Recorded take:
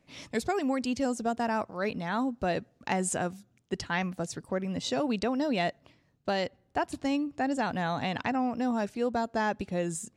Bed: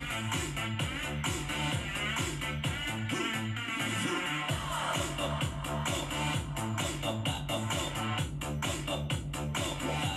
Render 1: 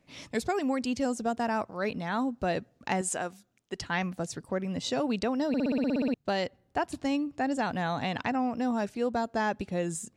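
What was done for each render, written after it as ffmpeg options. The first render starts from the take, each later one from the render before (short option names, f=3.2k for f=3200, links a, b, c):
-filter_complex "[0:a]asettb=1/sr,asplit=3[a][b][c];[a]atrim=end=3.014[d];[b]atrim=start=3.01:end=3.81,asetpts=PTS-STARTPTS,afade=t=in:d=0.004:c=qsin,afade=t=out:st=0.796:d=0.004:c=qsin,equalizer=f=100:t=o:w=2.8:g=-12[e];[c]atrim=start=3.806[f];[d][e]acrossfade=d=0.004:c1=hsin:c2=qsin[g];[g][f]acrossfade=d=0.004:c1=qsin:c2=hsin,asplit=12[h][i][j][k][l][m][n][o][p][q][r][s];[h]atrim=end=5.542[t];[i]atrim=start=5.478:end=5.542[u];[j]atrim=start=5.478:end=5.542[v];[k]atrim=start=5.478:end=5.542[w];[l]atrim=start=5.478:end=5.542[x];[m]atrim=start=5.478:end=5.542[y];[n]atrim=start=5.478:end=5.542[z];[o]atrim=start=5.478:end=5.542[aa];[p]atrim=start=5.478:end=5.542[ab];[q]atrim=start=5.478:end=5.542[ac];[r]atrim=start=5.478:end=5.542[ad];[s]atrim=start=6.138[ae];[t][u]acrossfade=d=0.004:c1=hsin:c2=hsin[af];[af][v]acrossfade=d=0.004:c1=hsin:c2=hsin[ag];[ag][w]acrossfade=d=0.004:c1=hsin:c2=hsin[ah];[ah][x]acrossfade=d=0.004:c1=hsin:c2=hsin[ai];[ai][y]acrossfade=d=0.004:c1=hsin:c2=hsin[aj];[aj][z]acrossfade=d=0.004:c1=hsin:c2=hsin[ak];[ak][aa]acrossfade=d=0.004:c1=hsin:c2=hsin[al];[al][ab]acrossfade=d=0.004:c1=hsin:c2=hsin[am];[am][ac]acrossfade=d=0.004:c1=hsin:c2=hsin[an];[an][ad]acrossfade=d=0.004:c1=hsin:c2=hsin[ao];[ao][ae]acrossfade=d=0.004:c1=hsin:c2=hsin"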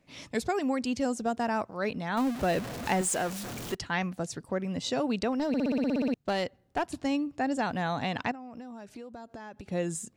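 -filter_complex "[0:a]asettb=1/sr,asplit=3[a][b][c];[a]atrim=end=2.174[d];[b]atrim=start=2.17:end=3.75,asetpts=PTS-STARTPTS,afade=t=in:d=0.004:c=qsin,afade=t=out:st=1.576:d=0.004:c=qsin,aeval=exprs='val(0)+0.5*0.0251*sgn(val(0))':c=same[e];[c]atrim=start=3.746[f];[d][e]acrossfade=d=0.004:c1=hsin:c2=qsin[g];[g][f]acrossfade=d=0.004:c1=qsin:c2=hsin,asettb=1/sr,asplit=3[h][i][j];[h]atrim=end=5.324[k];[i]atrim=start=5.32:end=6.94,asetpts=PTS-STARTPTS,afade=t=in:d=0.004:c=qsin,afade=t=out:st=1.616:d=0.004:c=qsin,aeval=exprs='clip(val(0),-1,0.0501)':c=same[l];[j]atrim=start=6.936[m];[k][l]acrossfade=d=0.004:c1=hsin:c2=qsin[n];[n][m]acrossfade=d=0.004:c1=qsin:c2=hsin,asettb=1/sr,asplit=3[o][p][q];[o]atrim=end=8.314[r];[p]atrim=start=8.31:end=9.66,asetpts=PTS-STARTPTS,afade=t=in:d=0.004:c=qsin,afade=t=out:st=1.346:d=0.004:c=qsin,acompressor=threshold=-39dB:ratio=16:attack=3.2:release=140:knee=1:detection=peak[s];[q]atrim=start=9.656[t];[r][s]acrossfade=d=0.004:c1=hsin:c2=qsin[u];[u][t]acrossfade=d=0.004:c1=qsin:c2=hsin"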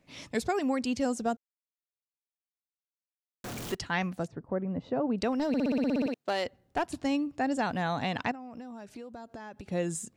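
-filter_complex "[0:a]asplit=3[a][b][c];[a]afade=t=out:st=4.26:d=0.02[d];[b]lowpass=1.1k,afade=t=in:st=4.26:d=0.02,afade=t=out:st=5.18:d=0.02[e];[c]afade=t=in:st=5.18:d=0.02[f];[d][e][f]amix=inputs=3:normalize=0,asettb=1/sr,asplit=3[g][h][i];[g]atrim=end=6.064[j];[h]atrim=start=6.06:end=6.46,asetpts=PTS-STARTPTS,afade=t=in:d=0.004:c=qsin,afade=t=out:st=0.396:d=0.004:c=qsin,highpass=330[k];[i]atrim=start=6.456[l];[j][k]acrossfade=d=0.004:c1=hsin:c2=qsin[m];[m][l]acrossfade=d=0.004:c1=qsin:c2=hsin,asplit=3[n][o][p];[n]atrim=end=1.37,asetpts=PTS-STARTPTS,afade=t=out:st=1.366:d=0.004:c=hsin[q];[o]atrim=start=1.37:end=3.44,asetpts=PTS-STARTPTS,volume=0[r];[p]atrim=start=3.44,asetpts=PTS-STARTPTS,afade=t=in:d=0.004:c=hsin[s];[q][r][s]concat=n=3:v=0:a=1"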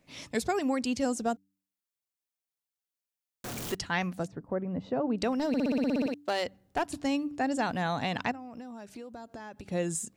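-af "highshelf=f=6k:g=5,bandreject=f=96.73:t=h:w=4,bandreject=f=193.46:t=h:w=4,bandreject=f=290.19:t=h:w=4"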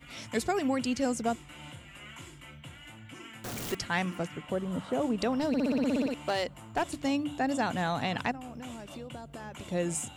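-filter_complex "[1:a]volume=-14dB[a];[0:a][a]amix=inputs=2:normalize=0"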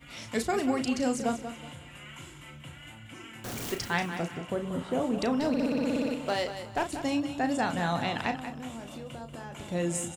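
-filter_complex "[0:a]asplit=2[a][b];[b]adelay=35,volume=-8dB[c];[a][c]amix=inputs=2:normalize=0,asplit=2[d][e];[e]aecho=0:1:186|372|558:0.316|0.0917|0.0266[f];[d][f]amix=inputs=2:normalize=0"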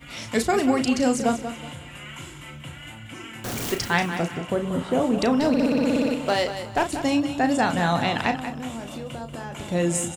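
-af "volume=7dB"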